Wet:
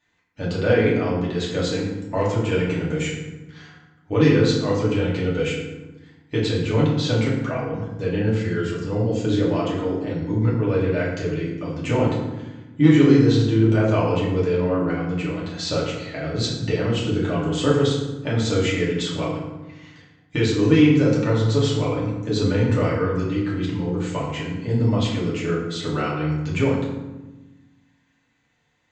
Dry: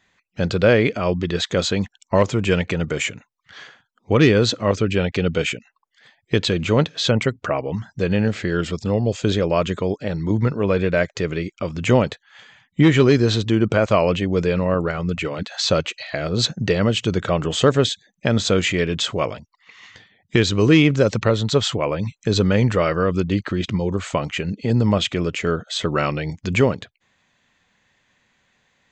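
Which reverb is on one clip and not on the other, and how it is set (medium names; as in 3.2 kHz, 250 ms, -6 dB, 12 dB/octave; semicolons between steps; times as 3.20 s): FDN reverb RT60 1.1 s, low-frequency decay 1.6×, high-frequency decay 0.6×, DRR -6.5 dB; trim -11.5 dB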